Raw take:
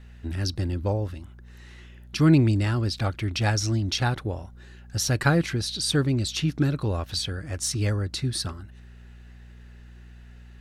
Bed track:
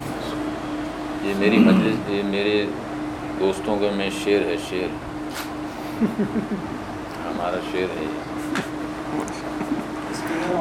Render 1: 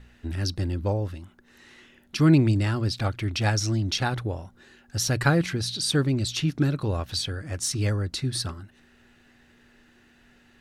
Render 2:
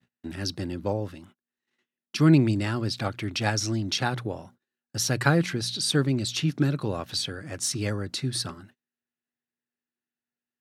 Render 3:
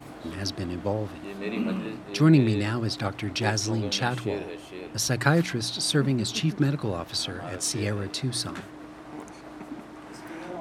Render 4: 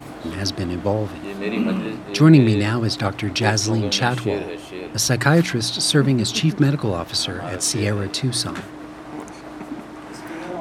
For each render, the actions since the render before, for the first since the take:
de-hum 60 Hz, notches 3
gate -47 dBFS, range -37 dB; HPF 120 Hz 24 dB/oct
add bed track -14 dB
gain +7 dB; limiter -1 dBFS, peak gain reduction 3 dB

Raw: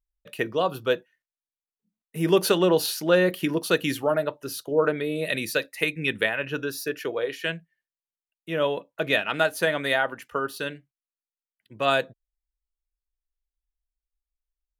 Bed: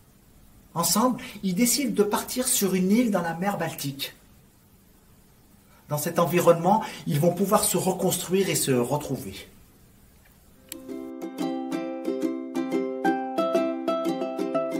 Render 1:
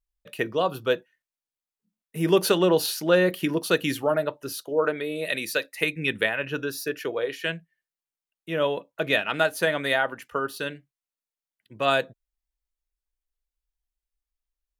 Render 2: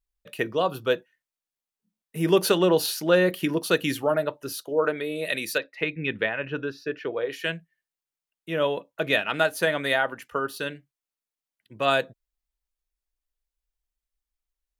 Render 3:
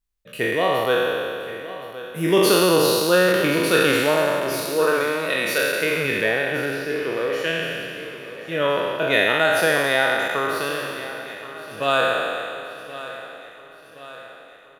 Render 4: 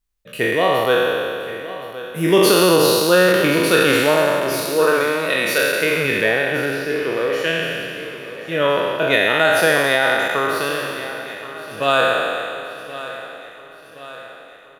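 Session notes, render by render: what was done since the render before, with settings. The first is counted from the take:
4.52–5.77 low shelf 190 Hz -11.5 dB
5.58–7.31 air absorption 240 m
spectral trails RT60 2.36 s; feedback echo 1.073 s, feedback 54%, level -15 dB
gain +3.5 dB; limiter -3 dBFS, peak gain reduction 3 dB

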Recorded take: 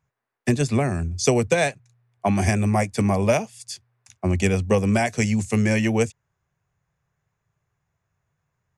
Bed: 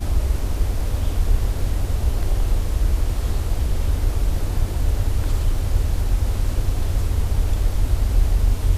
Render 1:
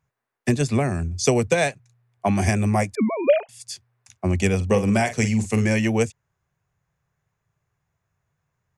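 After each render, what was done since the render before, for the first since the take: 2.95–3.49 sine-wave speech; 4.56–5.65 doubler 45 ms -10 dB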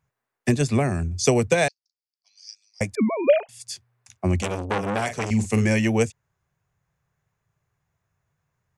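1.68–2.81 Butterworth band-pass 4900 Hz, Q 5.1; 4.42–5.31 core saturation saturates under 1600 Hz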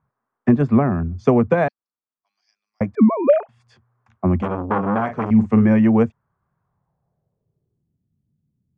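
small resonant body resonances 220/3200 Hz, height 9 dB, ringing for 25 ms; low-pass sweep 1200 Hz -> 250 Hz, 6.59–8.08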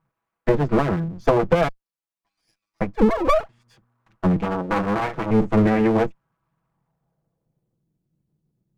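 minimum comb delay 6.1 ms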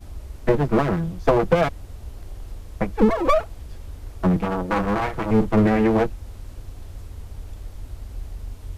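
add bed -16 dB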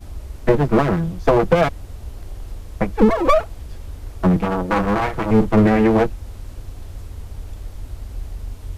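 gain +3.5 dB; limiter -2 dBFS, peak gain reduction 1.5 dB

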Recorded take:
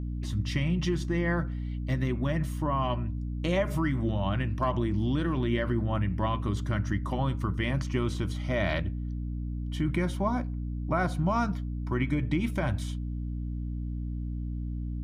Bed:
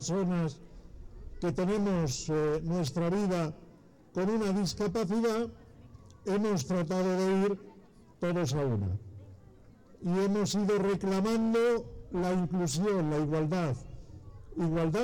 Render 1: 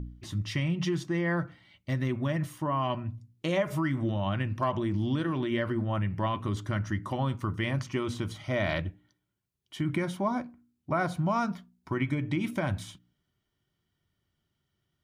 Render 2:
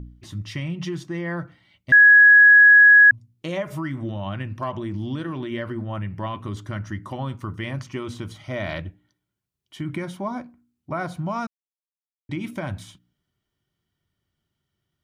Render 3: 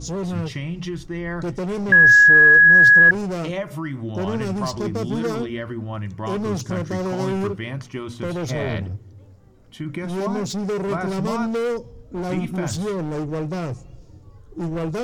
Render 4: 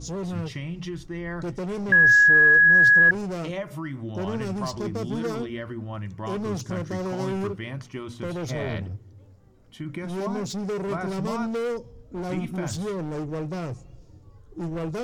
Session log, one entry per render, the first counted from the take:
de-hum 60 Hz, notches 5
1.92–3.11 bleep 1670 Hz -7.5 dBFS; 11.47–12.29 mute
add bed +3.5 dB
gain -4.5 dB

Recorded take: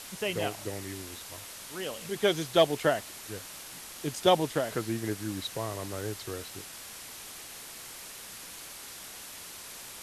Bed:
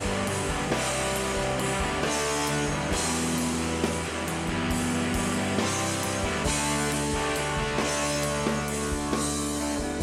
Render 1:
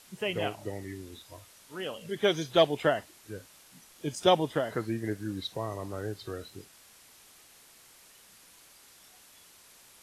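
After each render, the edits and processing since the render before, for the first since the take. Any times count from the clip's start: noise print and reduce 12 dB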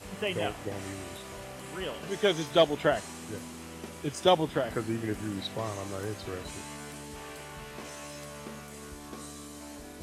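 add bed -16 dB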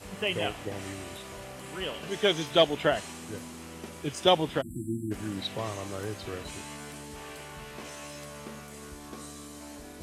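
4.61–5.11 spectral delete 360–7300 Hz; dynamic EQ 2900 Hz, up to +5 dB, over -50 dBFS, Q 1.7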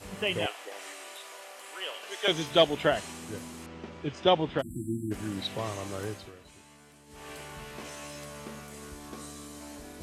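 0.46–2.28 Bessel high-pass 660 Hz, order 4; 3.66–4.59 air absorption 170 m; 6.07–7.32 dip -13.5 dB, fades 0.26 s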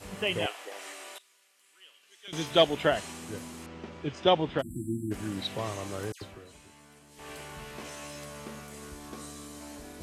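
1.18–2.33 passive tone stack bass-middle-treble 6-0-2; 6.12–7.19 dispersion lows, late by 95 ms, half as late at 2000 Hz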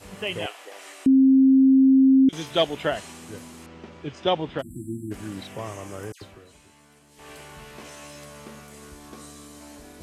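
1.06–2.29 bleep 266 Hz -12 dBFS; 5.43–6.14 bell 4000 Hz -12.5 dB 0.37 oct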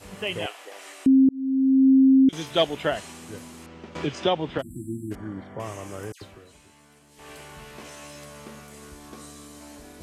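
1.29–1.89 fade in; 3.95–4.58 three-band squash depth 70%; 5.15–5.6 polynomial smoothing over 41 samples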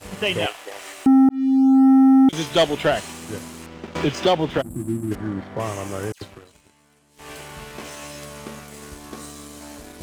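sample leveller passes 2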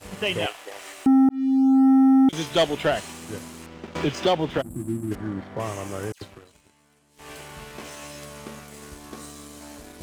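gain -3 dB

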